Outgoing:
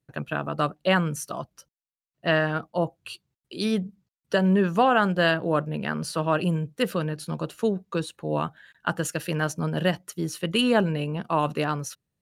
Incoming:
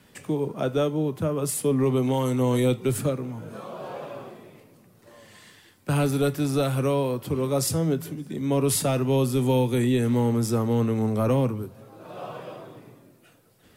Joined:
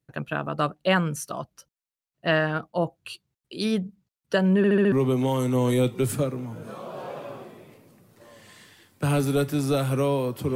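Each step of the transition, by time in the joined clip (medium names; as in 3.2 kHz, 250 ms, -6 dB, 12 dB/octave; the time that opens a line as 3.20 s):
outgoing
4.57 s: stutter in place 0.07 s, 5 plays
4.92 s: go over to incoming from 1.78 s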